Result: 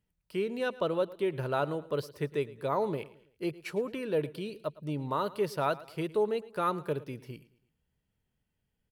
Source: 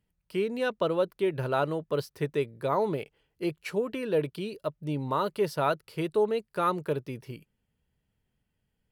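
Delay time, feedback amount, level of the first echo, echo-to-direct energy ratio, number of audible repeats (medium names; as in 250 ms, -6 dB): 110 ms, 42%, -19.0 dB, -18.0 dB, 3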